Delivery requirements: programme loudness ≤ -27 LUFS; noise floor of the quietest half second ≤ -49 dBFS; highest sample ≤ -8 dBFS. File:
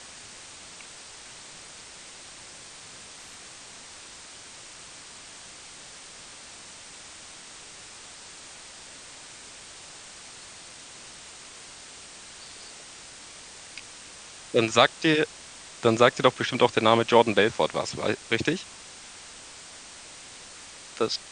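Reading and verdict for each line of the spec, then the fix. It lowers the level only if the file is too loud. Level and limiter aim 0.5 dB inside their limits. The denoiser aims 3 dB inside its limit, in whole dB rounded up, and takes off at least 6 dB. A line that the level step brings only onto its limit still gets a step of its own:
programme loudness -23.0 LUFS: fail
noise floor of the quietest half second -45 dBFS: fail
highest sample -4.0 dBFS: fail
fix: trim -4.5 dB

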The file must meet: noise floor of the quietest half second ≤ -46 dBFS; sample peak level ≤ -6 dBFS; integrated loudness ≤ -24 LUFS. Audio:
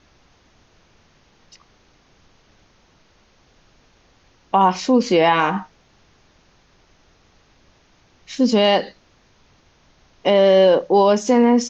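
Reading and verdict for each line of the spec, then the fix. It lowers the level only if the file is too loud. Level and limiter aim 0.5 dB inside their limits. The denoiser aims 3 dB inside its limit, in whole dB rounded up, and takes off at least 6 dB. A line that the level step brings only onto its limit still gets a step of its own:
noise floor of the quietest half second -56 dBFS: pass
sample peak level -4.5 dBFS: fail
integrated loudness -16.5 LUFS: fail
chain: trim -8 dB

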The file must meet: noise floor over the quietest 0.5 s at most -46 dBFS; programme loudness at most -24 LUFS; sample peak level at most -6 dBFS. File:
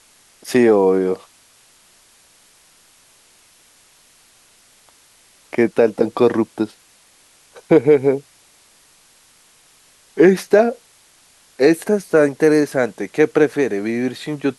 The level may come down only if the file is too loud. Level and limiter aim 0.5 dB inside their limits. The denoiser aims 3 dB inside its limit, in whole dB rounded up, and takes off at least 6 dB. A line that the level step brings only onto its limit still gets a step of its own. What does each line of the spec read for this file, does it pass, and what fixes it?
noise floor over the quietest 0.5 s -53 dBFS: pass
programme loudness -17.0 LUFS: fail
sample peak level -2.0 dBFS: fail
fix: trim -7.5 dB

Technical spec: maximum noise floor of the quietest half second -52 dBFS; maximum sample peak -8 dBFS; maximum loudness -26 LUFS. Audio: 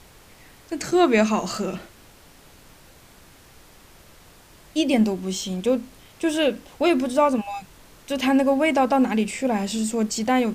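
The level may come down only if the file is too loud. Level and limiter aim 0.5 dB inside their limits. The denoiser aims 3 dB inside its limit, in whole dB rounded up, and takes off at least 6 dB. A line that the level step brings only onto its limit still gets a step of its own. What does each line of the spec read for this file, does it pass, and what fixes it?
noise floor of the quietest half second -50 dBFS: fail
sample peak -6.0 dBFS: fail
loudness -22.5 LUFS: fail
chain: trim -4 dB

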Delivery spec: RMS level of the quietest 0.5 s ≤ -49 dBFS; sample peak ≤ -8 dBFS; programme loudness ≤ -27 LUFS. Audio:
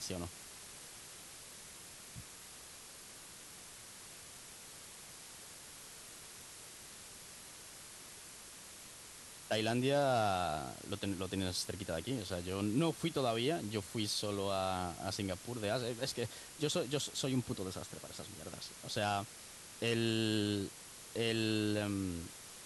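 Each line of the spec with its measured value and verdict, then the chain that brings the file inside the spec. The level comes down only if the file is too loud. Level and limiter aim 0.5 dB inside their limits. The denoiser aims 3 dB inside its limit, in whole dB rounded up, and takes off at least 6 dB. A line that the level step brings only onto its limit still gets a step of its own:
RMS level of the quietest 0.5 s -53 dBFS: pass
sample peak -21.0 dBFS: pass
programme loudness -37.0 LUFS: pass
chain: none needed

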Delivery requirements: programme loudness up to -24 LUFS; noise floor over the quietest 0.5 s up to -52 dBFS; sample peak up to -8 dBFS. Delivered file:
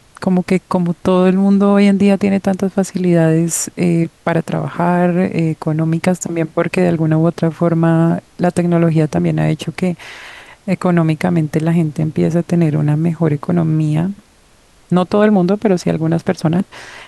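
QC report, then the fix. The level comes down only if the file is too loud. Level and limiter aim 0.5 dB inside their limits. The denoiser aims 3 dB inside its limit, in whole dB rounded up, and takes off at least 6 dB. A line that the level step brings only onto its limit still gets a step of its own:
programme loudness -15.0 LUFS: fail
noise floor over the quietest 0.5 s -49 dBFS: fail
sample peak -1.5 dBFS: fail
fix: trim -9.5 dB

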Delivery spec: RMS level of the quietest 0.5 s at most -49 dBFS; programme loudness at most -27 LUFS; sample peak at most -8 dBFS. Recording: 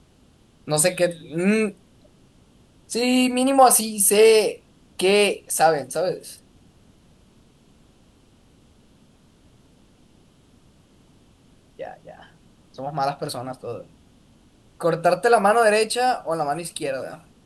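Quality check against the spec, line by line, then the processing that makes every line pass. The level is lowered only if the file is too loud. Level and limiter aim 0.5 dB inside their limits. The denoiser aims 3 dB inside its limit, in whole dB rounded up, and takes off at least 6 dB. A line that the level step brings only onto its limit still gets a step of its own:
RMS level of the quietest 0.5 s -56 dBFS: pass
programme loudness -20.0 LUFS: fail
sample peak -3.0 dBFS: fail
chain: trim -7.5 dB

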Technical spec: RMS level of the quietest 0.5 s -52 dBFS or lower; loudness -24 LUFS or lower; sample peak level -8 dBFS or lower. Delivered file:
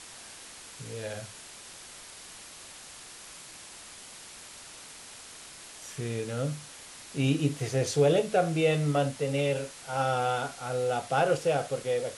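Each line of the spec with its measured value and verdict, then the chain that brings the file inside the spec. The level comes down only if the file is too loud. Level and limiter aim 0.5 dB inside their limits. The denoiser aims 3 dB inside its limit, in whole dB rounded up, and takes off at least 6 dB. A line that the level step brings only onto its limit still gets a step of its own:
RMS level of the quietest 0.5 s -47 dBFS: fail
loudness -29.0 LUFS: pass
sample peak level -12.5 dBFS: pass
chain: noise reduction 8 dB, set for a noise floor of -47 dBFS

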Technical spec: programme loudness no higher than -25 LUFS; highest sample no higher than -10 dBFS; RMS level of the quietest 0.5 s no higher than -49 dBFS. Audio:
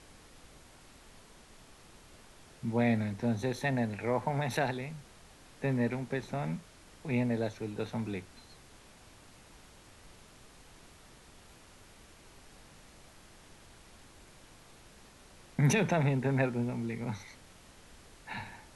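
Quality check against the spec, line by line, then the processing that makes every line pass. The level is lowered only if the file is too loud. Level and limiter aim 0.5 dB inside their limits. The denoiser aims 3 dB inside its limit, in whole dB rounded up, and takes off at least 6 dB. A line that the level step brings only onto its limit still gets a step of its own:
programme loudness -33.0 LUFS: pass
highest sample -16.0 dBFS: pass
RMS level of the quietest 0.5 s -56 dBFS: pass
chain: none needed

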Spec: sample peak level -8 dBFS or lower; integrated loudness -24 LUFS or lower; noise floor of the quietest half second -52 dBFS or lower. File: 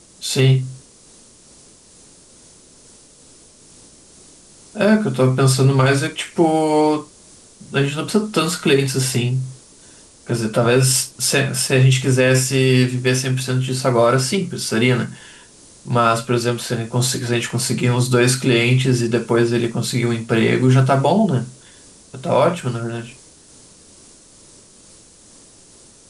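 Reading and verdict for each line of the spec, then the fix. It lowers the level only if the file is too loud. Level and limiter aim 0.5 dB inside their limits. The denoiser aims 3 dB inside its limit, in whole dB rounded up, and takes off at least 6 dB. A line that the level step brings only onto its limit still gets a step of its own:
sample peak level -4.5 dBFS: fail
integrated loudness -17.5 LUFS: fail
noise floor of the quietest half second -47 dBFS: fail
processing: trim -7 dB

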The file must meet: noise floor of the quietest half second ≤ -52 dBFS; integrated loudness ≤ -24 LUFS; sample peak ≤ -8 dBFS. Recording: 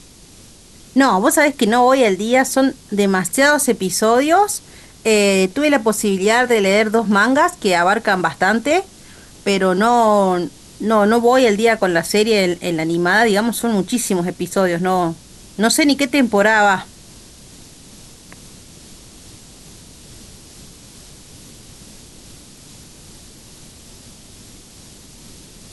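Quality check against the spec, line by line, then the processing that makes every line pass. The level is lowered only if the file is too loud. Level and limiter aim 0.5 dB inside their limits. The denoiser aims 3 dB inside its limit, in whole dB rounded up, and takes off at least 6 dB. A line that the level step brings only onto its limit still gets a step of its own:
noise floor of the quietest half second -43 dBFS: fail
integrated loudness -15.5 LUFS: fail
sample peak -4.0 dBFS: fail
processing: noise reduction 6 dB, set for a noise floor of -43 dBFS; trim -9 dB

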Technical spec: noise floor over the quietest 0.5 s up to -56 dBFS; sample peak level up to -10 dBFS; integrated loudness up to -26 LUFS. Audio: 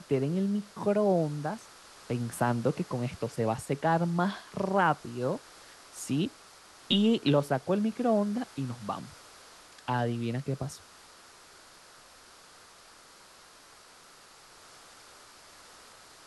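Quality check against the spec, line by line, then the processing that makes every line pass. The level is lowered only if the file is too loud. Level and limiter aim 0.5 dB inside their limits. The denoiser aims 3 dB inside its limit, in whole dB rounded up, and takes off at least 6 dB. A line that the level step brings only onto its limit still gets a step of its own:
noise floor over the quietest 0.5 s -55 dBFS: fail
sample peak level -12.0 dBFS: pass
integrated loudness -30.0 LUFS: pass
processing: noise reduction 6 dB, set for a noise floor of -55 dBFS

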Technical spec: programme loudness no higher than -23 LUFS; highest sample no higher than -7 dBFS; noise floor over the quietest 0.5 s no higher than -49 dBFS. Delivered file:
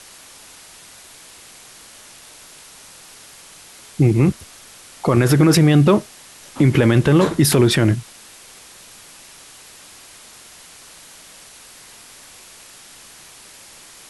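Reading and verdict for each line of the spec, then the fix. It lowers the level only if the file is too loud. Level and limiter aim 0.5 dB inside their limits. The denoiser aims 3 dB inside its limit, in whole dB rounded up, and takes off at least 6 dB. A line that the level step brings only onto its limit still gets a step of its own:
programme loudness -15.5 LUFS: fail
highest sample -4.5 dBFS: fail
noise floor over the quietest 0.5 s -43 dBFS: fail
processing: trim -8 dB

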